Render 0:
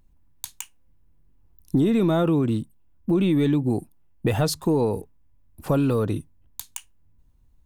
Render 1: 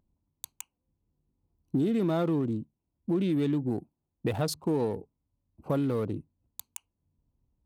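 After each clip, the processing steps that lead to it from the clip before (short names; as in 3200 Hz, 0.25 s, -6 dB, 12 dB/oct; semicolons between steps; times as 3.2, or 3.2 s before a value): Wiener smoothing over 25 samples; HPF 120 Hz 6 dB/oct; gain -5.5 dB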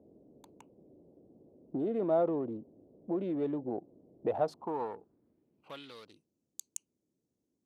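band noise 38–330 Hz -51 dBFS; band-pass sweep 610 Hz -> 6600 Hz, 4.32–6.37; gain +5 dB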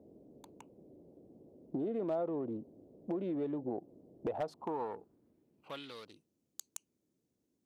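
compressor 3:1, threshold -36 dBFS, peak gain reduction 9.5 dB; wavefolder -29 dBFS; gain +1.5 dB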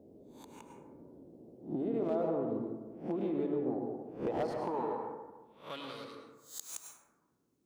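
spectral swells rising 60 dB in 0.36 s; plate-style reverb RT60 1.2 s, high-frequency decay 0.35×, pre-delay 90 ms, DRR 2 dB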